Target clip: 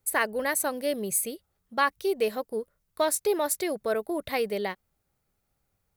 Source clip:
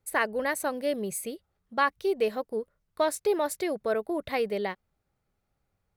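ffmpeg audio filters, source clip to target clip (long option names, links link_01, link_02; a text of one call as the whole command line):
ffmpeg -i in.wav -af "crystalizer=i=1.5:c=0" out.wav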